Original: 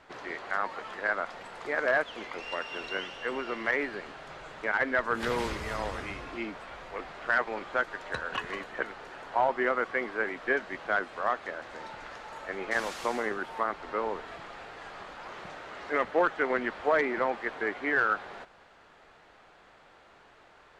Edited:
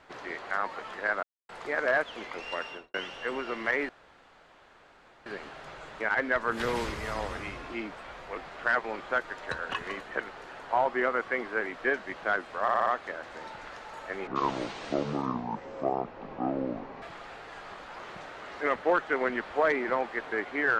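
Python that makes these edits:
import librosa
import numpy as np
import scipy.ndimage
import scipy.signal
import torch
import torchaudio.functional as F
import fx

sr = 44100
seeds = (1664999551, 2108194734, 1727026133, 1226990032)

y = fx.studio_fade_out(x, sr, start_s=2.65, length_s=0.29)
y = fx.edit(y, sr, fx.silence(start_s=1.23, length_s=0.26),
    fx.insert_room_tone(at_s=3.89, length_s=1.37),
    fx.stutter(start_s=11.25, slice_s=0.06, count=5),
    fx.speed_span(start_s=12.66, length_s=1.65, speed=0.6), tone=tone)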